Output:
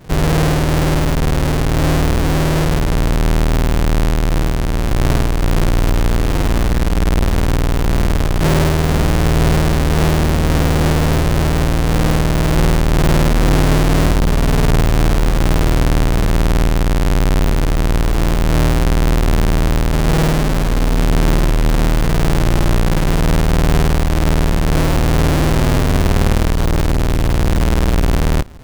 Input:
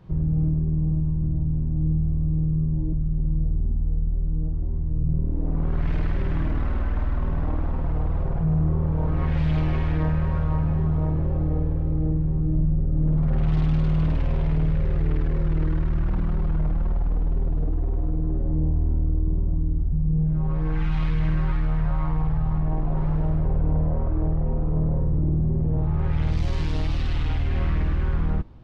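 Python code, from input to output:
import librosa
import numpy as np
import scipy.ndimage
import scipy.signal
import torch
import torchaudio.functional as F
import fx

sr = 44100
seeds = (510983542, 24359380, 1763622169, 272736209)

y = fx.halfwave_hold(x, sr)
y = fx.formant_shift(y, sr, semitones=6)
y = y * 10.0 ** (4.5 / 20.0)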